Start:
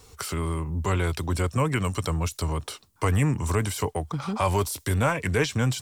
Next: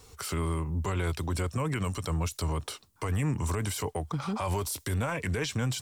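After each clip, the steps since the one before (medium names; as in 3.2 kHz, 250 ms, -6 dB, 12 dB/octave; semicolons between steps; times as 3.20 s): peak limiter -20 dBFS, peak gain reduction 9 dB; trim -2 dB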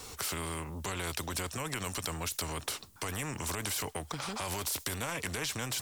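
spectrum-flattening compressor 2:1; trim +6 dB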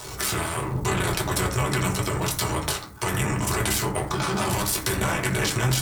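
cycle switcher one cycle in 3, muted; reverberation RT60 0.60 s, pre-delay 4 ms, DRR -3 dB; trim +8 dB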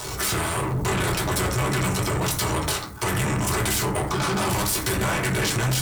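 saturation -25 dBFS, distortion -10 dB; trim +5.5 dB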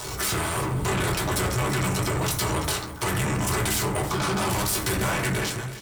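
fade out at the end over 0.50 s; delay 331 ms -14 dB; trim -1.5 dB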